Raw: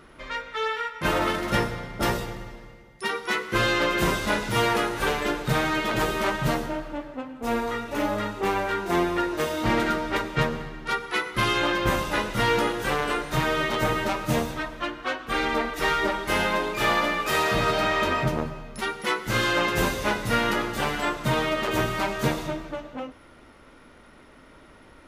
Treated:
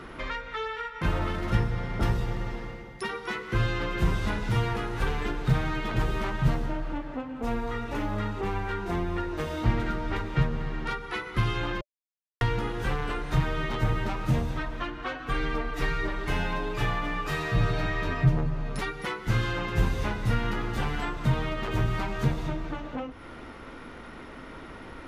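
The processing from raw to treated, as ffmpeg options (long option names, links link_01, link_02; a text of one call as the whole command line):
ffmpeg -i in.wav -filter_complex "[0:a]asettb=1/sr,asplit=3[link_01][link_02][link_03];[link_01]atrim=end=15.144[link_04];[link_02]atrim=start=15.14:end=19.07,asetpts=PTS-STARTPTS,afade=type=in:duration=0.004:curve=qsin,afade=type=out:start_time=3.926:duration=0.004:curve=qsin,aecho=1:1:6.9:0.65,atrim=end_sample=173313[link_05];[link_03]atrim=start=19.066[link_06];[link_04][link_05]acrossfade=duration=0.004:curve1=hsin:curve2=qsin[link_07];[link_07][link_06]acrossfade=duration=0.004:curve1=qsin:curve2=hsin,asplit=3[link_08][link_09][link_10];[link_08]atrim=end=11.81,asetpts=PTS-STARTPTS,afade=type=out:start_time=11.806:duration=0.004:curve=hsin[link_11];[link_09]atrim=start=11.81:end=12.41,asetpts=PTS-STARTPTS,volume=0[link_12];[link_10]atrim=start=12.41,asetpts=PTS-STARTPTS,afade=type=in:duration=0.004:curve=hsin[link_13];[link_11][link_12][link_13]concat=n=3:v=0:a=1,highshelf=frequency=6300:gain=-11,bandreject=frequency=590:width=12,acrossover=split=130[link_14][link_15];[link_15]acompressor=threshold=-42dB:ratio=4[link_16];[link_14][link_16]amix=inputs=2:normalize=0,volume=8.5dB" out.wav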